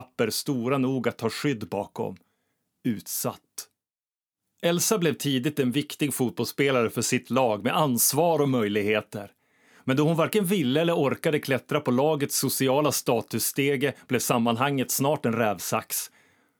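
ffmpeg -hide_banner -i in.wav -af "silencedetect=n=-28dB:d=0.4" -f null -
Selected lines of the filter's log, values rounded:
silence_start: 2.10
silence_end: 2.86 | silence_duration: 0.76
silence_start: 3.61
silence_end: 4.64 | silence_duration: 1.03
silence_start: 9.22
silence_end: 9.88 | silence_duration: 0.66
silence_start: 16.05
silence_end: 16.60 | silence_duration: 0.55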